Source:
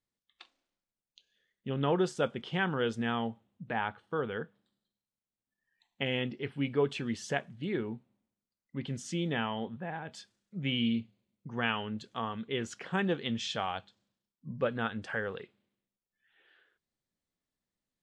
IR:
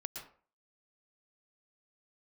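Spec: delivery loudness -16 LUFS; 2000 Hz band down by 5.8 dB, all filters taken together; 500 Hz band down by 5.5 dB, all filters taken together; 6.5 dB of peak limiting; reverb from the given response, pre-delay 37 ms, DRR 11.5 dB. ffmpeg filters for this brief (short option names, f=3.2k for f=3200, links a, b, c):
-filter_complex "[0:a]equalizer=f=500:t=o:g=-6.5,equalizer=f=2k:t=o:g=-7.5,alimiter=level_in=2dB:limit=-24dB:level=0:latency=1,volume=-2dB,asplit=2[a][b];[1:a]atrim=start_sample=2205,adelay=37[c];[b][c]afir=irnorm=-1:irlink=0,volume=-10dB[d];[a][d]amix=inputs=2:normalize=0,volume=22.5dB"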